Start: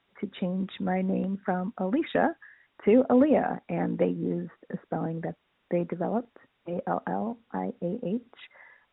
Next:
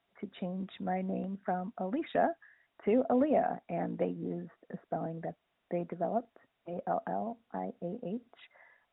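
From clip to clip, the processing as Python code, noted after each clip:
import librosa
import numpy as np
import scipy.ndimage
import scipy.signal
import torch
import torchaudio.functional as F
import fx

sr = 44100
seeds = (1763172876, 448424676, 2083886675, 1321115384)

y = fx.peak_eq(x, sr, hz=680.0, db=10.5, octaves=0.23)
y = y * 10.0 ** (-8.0 / 20.0)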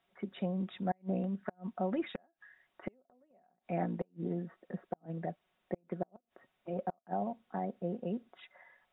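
y = fx.gate_flip(x, sr, shuts_db=-23.0, range_db=-40)
y = y + 0.39 * np.pad(y, (int(5.4 * sr / 1000.0), 0))[:len(y)]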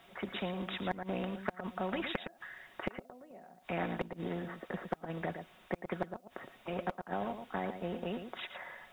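y = x + 10.0 ** (-15.0 / 20.0) * np.pad(x, (int(113 * sr / 1000.0), 0))[:len(x)]
y = fx.spectral_comp(y, sr, ratio=2.0)
y = y * 10.0 ** (5.5 / 20.0)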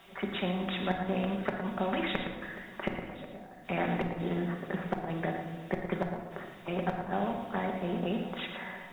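y = x + 10.0 ** (-18.5 / 20.0) * np.pad(x, (int(1089 * sr / 1000.0), 0))[:len(x)]
y = fx.room_shoebox(y, sr, seeds[0], volume_m3=1100.0, walls='mixed', distance_m=1.2)
y = y * 10.0 ** (3.0 / 20.0)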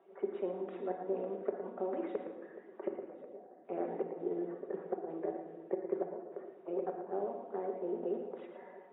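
y = fx.spec_quant(x, sr, step_db=15)
y = fx.ladder_bandpass(y, sr, hz=450.0, resonance_pct=60)
y = y * 10.0 ** (5.5 / 20.0)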